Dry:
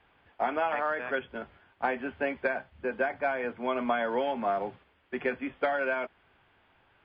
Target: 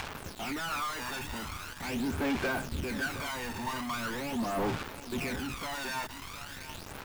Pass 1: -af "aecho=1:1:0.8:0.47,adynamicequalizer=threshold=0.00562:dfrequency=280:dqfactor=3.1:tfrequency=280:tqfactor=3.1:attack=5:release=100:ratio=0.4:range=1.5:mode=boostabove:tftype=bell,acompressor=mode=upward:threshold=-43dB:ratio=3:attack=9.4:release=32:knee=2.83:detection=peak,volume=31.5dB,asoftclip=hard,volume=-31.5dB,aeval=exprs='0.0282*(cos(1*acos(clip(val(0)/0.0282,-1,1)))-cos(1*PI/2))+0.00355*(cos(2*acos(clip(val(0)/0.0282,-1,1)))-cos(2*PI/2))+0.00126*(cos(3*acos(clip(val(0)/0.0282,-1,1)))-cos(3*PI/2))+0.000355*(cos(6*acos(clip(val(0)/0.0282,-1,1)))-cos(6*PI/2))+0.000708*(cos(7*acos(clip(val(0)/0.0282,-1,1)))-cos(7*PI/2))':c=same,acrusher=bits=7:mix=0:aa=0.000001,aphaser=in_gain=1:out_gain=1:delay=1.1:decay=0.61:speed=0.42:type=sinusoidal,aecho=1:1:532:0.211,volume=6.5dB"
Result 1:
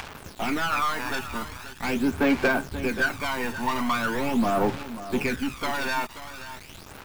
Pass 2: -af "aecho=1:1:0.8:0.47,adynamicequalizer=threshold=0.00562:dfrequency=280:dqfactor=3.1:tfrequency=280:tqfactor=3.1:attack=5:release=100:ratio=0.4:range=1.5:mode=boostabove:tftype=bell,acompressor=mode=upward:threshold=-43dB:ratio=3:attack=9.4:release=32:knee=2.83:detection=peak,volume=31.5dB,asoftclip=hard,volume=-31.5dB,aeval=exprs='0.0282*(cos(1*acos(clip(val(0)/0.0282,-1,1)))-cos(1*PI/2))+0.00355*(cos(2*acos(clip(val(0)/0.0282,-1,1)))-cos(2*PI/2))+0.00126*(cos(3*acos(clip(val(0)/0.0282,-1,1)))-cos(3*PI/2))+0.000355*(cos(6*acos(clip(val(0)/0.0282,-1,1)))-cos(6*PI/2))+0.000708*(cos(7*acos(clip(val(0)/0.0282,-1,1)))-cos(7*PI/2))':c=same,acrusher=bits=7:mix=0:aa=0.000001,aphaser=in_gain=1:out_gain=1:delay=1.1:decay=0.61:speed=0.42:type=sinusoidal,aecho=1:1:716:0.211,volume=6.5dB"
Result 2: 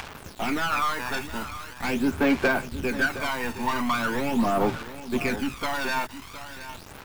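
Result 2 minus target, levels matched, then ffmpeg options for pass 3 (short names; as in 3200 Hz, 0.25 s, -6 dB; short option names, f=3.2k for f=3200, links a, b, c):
overloaded stage: distortion -5 dB
-af "aecho=1:1:0.8:0.47,adynamicequalizer=threshold=0.00562:dfrequency=280:dqfactor=3.1:tfrequency=280:tqfactor=3.1:attack=5:release=100:ratio=0.4:range=1.5:mode=boostabove:tftype=bell,acompressor=mode=upward:threshold=-43dB:ratio=3:attack=9.4:release=32:knee=2.83:detection=peak,volume=41.5dB,asoftclip=hard,volume=-41.5dB,aeval=exprs='0.0282*(cos(1*acos(clip(val(0)/0.0282,-1,1)))-cos(1*PI/2))+0.00355*(cos(2*acos(clip(val(0)/0.0282,-1,1)))-cos(2*PI/2))+0.00126*(cos(3*acos(clip(val(0)/0.0282,-1,1)))-cos(3*PI/2))+0.000355*(cos(6*acos(clip(val(0)/0.0282,-1,1)))-cos(6*PI/2))+0.000708*(cos(7*acos(clip(val(0)/0.0282,-1,1)))-cos(7*PI/2))':c=same,acrusher=bits=7:mix=0:aa=0.000001,aphaser=in_gain=1:out_gain=1:delay=1.1:decay=0.61:speed=0.42:type=sinusoidal,aecho=1:1:716:0.211,volume=6.5dB"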